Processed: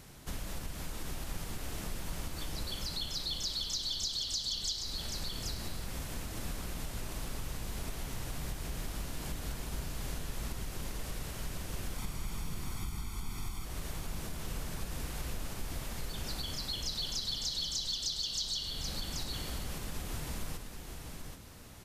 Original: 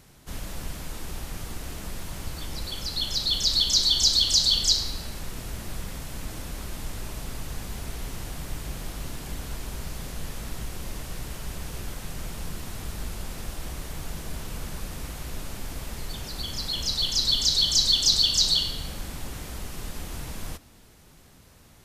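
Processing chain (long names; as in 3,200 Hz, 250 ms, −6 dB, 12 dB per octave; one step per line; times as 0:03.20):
0:11.98–0:13.65: comb filter 0.9 ms, depth 92%
downward compressor 6 to 1, threshold −36 dBFS, peak gain reduction 19 dB
on a send: single-tap delay 782 ms −6 dB
on the sum: level +1 dB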